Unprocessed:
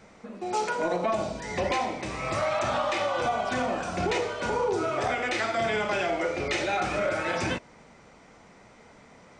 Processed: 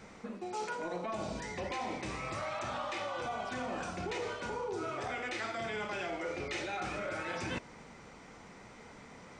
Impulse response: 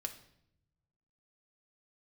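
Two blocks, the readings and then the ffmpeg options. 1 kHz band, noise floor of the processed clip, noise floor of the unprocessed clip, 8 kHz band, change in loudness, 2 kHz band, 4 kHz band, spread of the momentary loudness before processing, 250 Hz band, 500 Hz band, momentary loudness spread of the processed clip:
-10.0 dB, -53 dBFS, -54 dBFS, -8.5 dB, -10.0 dB, -9.0 dB, -9.0 dB, 4 LU, -8.5 dB, -11.0 dB, 15 LU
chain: -af "equalizer=f=630:t=o:w=0.38:g=-4.5,areverse,acompressor=threshold=0.0141:ratio=5,areverse,volume=1.12"

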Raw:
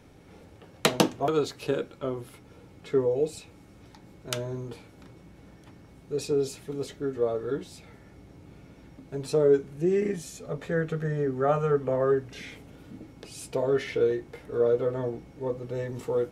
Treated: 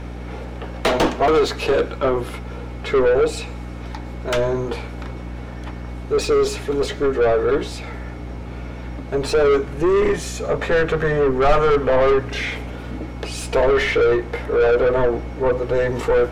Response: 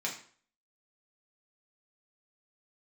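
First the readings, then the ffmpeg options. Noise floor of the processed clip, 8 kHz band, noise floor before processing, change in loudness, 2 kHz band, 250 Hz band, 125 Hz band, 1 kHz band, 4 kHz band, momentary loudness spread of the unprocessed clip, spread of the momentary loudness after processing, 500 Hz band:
-32 dBFS, +6.0 dB, -53 dBFS, +9.0 dB, +14.5 dB, +7.0 dB, +7.5 dB, +12.5 dB, +8.5 dB, 18 LU, 16 LU, +9.5 dB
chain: -filter_complex "[0:a]asplit=2[s0][s1];[s1]highpass=f=720:p=1,volume=39.8,asoftclip=type=tanh:threshold=0.631[s2];[s0][s2]amix=inputs=2:normalize=0,lowpass=f=1700:p=1,volume=0.501,asubboost=boost=9:cutoff=55,aeval=exprs='val(0)+0.0398*(sin(2*PI*60*n/s)+sin(2*PI*2*60*n/s)/2+sin(2*PI*3*60*n/s)/3+sin(2*PI*4*60*n/s)/4+sin(2*PI*5*60*n/s)/5)':c=same,asplit=2[s3][s4];[1:a]atrim=start_sample=2205,adelay=100[s5];[s4][s5]afir=irnorm=-1:irlink=0,volume=0.0596[s6];[s3][s6]amix=inputs=2:normalize=0,volume=0.75"

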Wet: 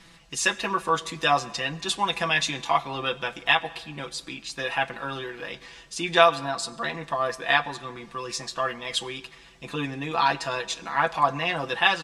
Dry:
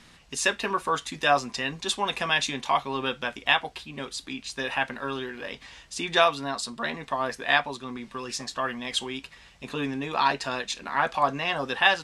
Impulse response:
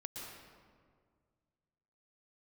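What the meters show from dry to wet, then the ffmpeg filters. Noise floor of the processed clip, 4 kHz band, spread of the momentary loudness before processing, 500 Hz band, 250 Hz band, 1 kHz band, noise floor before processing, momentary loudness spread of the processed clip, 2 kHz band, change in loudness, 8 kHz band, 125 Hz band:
-51 dBFS, +1.0 dB, 13 LU, +2.0 dB, -1.0 dB, +1.5 dB, -54 dBFS, 13 LU, +1.0 dB, +1.5 dB, +1.5 dB, +3.0 dB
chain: -filter_complex "[0:a]aecho=1:1:6:0.74,asplit=2[s0][s1];[1:a]atrim=start_sample=2205,asetrate=57330,aresample=44100[s2];[s1][s2]afir=irnorm=-1:irlink=0,volume=0.224[s3];[s0][s3]amix=inputs=2:normalize=0,volume=0.841"

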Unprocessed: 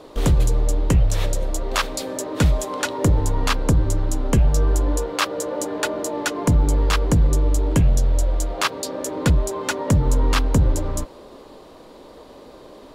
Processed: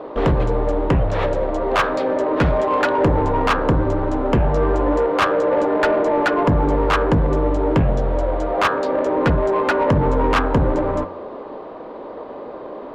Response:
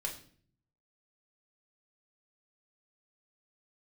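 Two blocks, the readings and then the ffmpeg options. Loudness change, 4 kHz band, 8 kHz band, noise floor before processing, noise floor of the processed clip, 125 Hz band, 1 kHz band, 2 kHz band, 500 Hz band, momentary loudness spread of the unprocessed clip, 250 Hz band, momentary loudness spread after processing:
+2.5 dB, -3.0 dB, under -15 dB, -44 dBFS, -34 dBFS, -1.5 dB, +9.0 dB, +5.0 dB, +9.5 dB, 7 LU, +4.5 dB, 16 LU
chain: -filter_complex "[0:a]adynamicsmooth=sensitivity=0.5:basefreq=1400,bandreject=f=91.03:t=h:w=4,bandreject=f=182.06:t=h:w=4,bandreject=f=273.09:t=h:w=4,bandreject=f=364.12:t=h:w=4,bandreject=f=455.15:t=h:w=4,bandreject=f=546.18:t=h:w=4,bandreject=f=637.21:t=h:w=4,bandreject=f=728.24:t=h:w=4,bandreject=f=819.27:t=h:w=4,bandreject=f=910.3:t=h:w=4,bandreject=f=1001.33:t=h:w=4,bandreject=f=1092.36:t=h:w=4,bandreject=f=1183.39:t=h:w=4,bandreject=f=1274.42:t=h:w=4,bandreject=f=1365.45:t=h:w=4,bandreject=f=1456.48:t=h:w=4,bandreject=f=1547.51:t=h:w=4,bandreject=f=1638.54:t=h:w=4,bandreject=f=1729.57:t=h:w=4,bandreject=f=1820.6:t=h:w=4,asplit=2[s0][s1];[s1]highpass=f=720:p=1,volume=14.1,asoftclip=type=tanh:threshold=0.473[s2];[s0][s2]amix=inputs=2:normalize=0,lowpass=f=2300:p=1,volume=0.501"

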